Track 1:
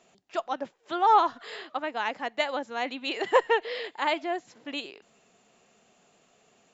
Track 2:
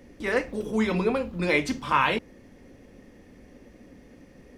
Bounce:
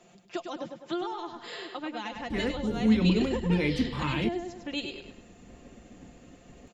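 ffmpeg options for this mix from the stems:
ffmpeg -i stem1.wav -i stem2.wav -filter_complex "[0:a]aecho=1:1:5.7:0.59,acompressor=threshold=-25dB:ratio=6,lowshelf=frequency=370:gain=8.5,volume=0.5dB,asplit=2[link_01][link_02];[link_02]volume=-7dB[link_03];[1:a]agate=range=-33dB:threshold=-44dB:ratio=3:detection=peak,bass=frequency=250:gain=5,treble=frequency=4000:gain=-14,adelay=2100,volume=1.5dB[link_04];[link_03]aecho=0:1:102|204|306|408|510:1|0.33|0.109|0.0359|0.0119[link_05];[link_01][link_04][link_05]amix=inputs=3:normalize=0,acrossover=split=330|3000[link_06][link_07][link_08];[link_07]acompressor=threshold=-41dB:ratio=3[link_09];[link_06][link_09][link_08]amix=inputs=3:normalize=0" out.wav

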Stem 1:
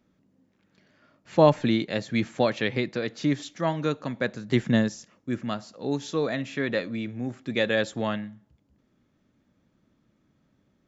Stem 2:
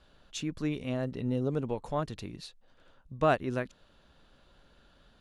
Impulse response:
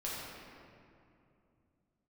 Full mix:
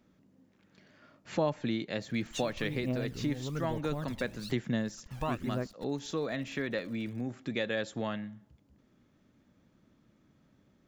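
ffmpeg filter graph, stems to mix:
-filter_complex "[0:a]volume=1.5dB[link_01];[1:a]acrusher=bits=8:mix=0:aa=0.000001,aphaser=in_gain=1:out_gain=1:delay=1.3:decay=0.73:speed=1.1:type=triangular,adelay=2000,volume=0.5dB[link_02];[link_01][link_02]amix=inputs=2:normalize=0,acompressor=threshold=-37dB:ratio=2"

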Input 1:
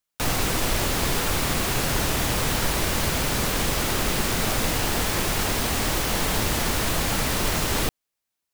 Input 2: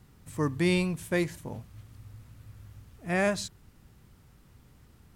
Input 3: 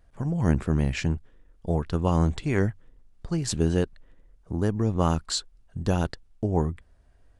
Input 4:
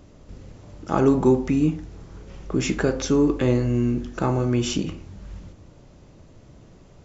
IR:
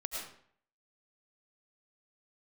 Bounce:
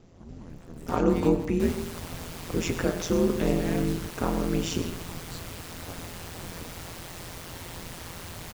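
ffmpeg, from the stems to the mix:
-filter_complex "[0:a]adelay=1400,volume=-13.5dB[link_01];[1:a]acrusher=bits=6:dc=4:mix=0:aa=0.000001,adelay=500,volume=-4dB,asplit=2[link_02][link_03];[link_03]volume=-21dB[link_04];[2:a]alimiter=limit=-14.5dB:level=0:latency=1,volume=-16dB[link_05];[3:a]volume=-4.5dB,asplit=3[link_06][link_07][link_08];[link_07]volume=-8dB[link_09];[link_08]apad=whole_len=249260[link_10];[link_02][link_10]sidechaincompress=threshold=-29dB:ratio=3:attack=9.4:release=333[link_11];[4:a]atrim=start_sample=2205[link_12];[link_04][link_09]amix=inputs=2:normalize=0[link_13];[link_13][link_12]afir=irnorm=-1:irlink=0[link_14];[link_01][link_11][link_05][link_06][link_14]amix=inputs=5:normalize=0,aeval=exprs='val(0)*sin(2*PI*85*n/s)':channel_layout=same"

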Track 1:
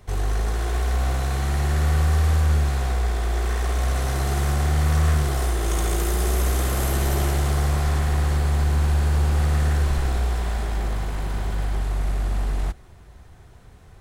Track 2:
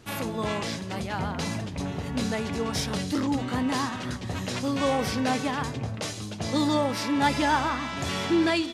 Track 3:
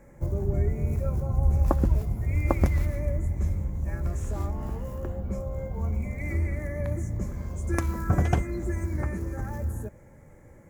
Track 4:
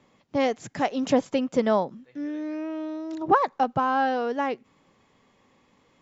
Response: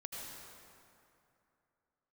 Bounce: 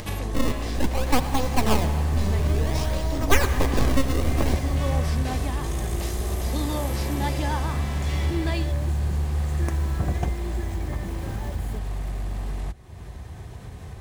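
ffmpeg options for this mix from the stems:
-filter_complex "[0:a]highpass=64,lowshelf=frequency=190:gain=6,volume=-8.5dB[link_01];[1:a]volume=-6.5dB[link_02];[2:a]acrusher=bits=7:mix=0:aa=0.000001,adelay=1900,volume=-4dB[link_03];[3:a]acrusher=samples=31:mix=1:aa=0.000001:lfo=1:lforange=49.6:lforate=0.55,aeval=exprs='abs(val(0))':channel_layout=same,volume=0.5dB,asplit=2[link_04][link_05];[link_05]volume=-3.5dB[link_06];[4:a]atrim=start_sample=2205[link_07];[link_06][link_07]afir=irnorm=-1:irlink=0[link_08];[link_01][link_02][link_03][link_04][link_08]amix=inputs=5:normalize=0,bandreject=frequency=1400:width=7.3,acompressor=mode=upward:threshold=-23dB:ratio=2.5"

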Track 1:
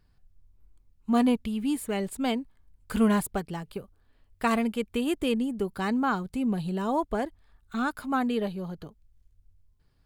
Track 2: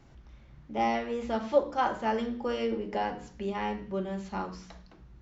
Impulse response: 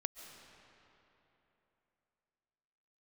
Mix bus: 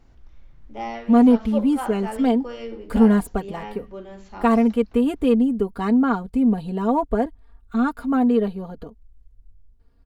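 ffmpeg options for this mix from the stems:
-filter_complex "[0:a]tiltshelf=frequency=1400:gain=7,aecho=1:1:4.3:0.73,asoftclip=type=tanh:threshold=-4dB,volume=0.5dB[link_01];[1:a]volume=-3dB[link_02];[link_01][link_02]amix=inputs=2:normalize=0,equalizer=frequency=170:width_type=o:width=0.33:gain=-11"

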